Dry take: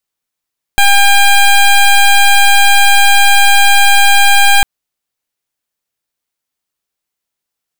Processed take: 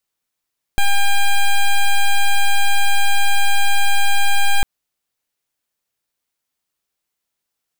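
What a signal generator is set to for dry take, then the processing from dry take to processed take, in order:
pulse 802 Hz, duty 14% -6 dBFS 3.85 s
one-sided wavefolder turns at -13.5 dBFS; peak limiter -10.5 dBFS

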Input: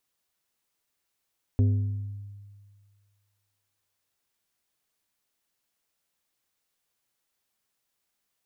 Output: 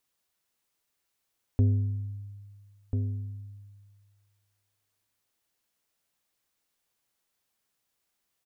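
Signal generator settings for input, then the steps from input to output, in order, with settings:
glass hit plate, length 3.47 s, lowest mode 101 Hz, modes 5, decay 1.85 s, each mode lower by 9 dB, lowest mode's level -17 dB
echo from a far wall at 230 m, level -6 dB

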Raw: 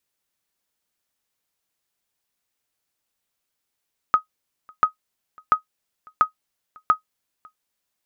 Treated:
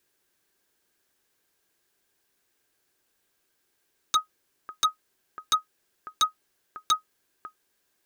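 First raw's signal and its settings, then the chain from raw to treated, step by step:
sonar ping 1.26 kHz, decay 0.11 s, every 0.69 s, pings 5, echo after 0.55 s, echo -29.5 dB -6.5 dBFS
in parallel at -0.5 dB: peak limiter -18 dBFS; on the sum: small resonant body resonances 370/1600 Hz, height 10 dB, ringing for 25 ms; wavefolder -15.5 dBFS

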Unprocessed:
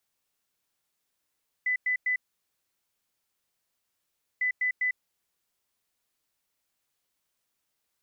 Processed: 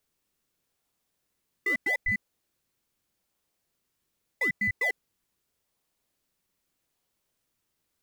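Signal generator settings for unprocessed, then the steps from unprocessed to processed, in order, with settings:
beep pattern sine 2 kHz, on 0.10 s, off 0.10 s, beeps 3, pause 2.25 s, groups 2, -23.5 dBFS
in parallel at -9 dB: decimation with a swept rate 40×, swing 100% 0.81 Hz

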